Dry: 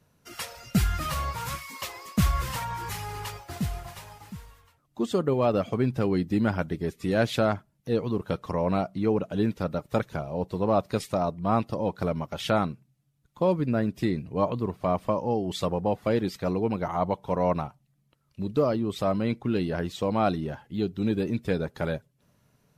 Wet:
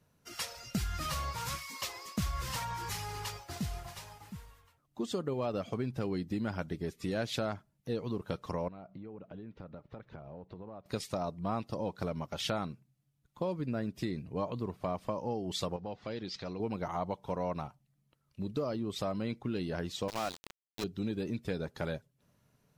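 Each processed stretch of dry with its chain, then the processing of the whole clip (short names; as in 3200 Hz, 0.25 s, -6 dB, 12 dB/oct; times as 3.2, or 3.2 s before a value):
8.68–10.86 compressor 12:1, threshold -37 dBFS + air absorption 270 m
15.76–16.6 LPF 5200 Hz 24 dB/oct + high shelf 2900 Hz +9 dB + compressor 2:1, threshold -38 dBFS
20.08–20.84 HPF 430 Hz 6 dB/oct + sample gate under -29 dBFS
whole clip: compressor 3:1, threshold -27 dBFS; dynamic EQ 5300 Hz, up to +6 dB, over -55 dBFS, Q 0.98; gain -5 dB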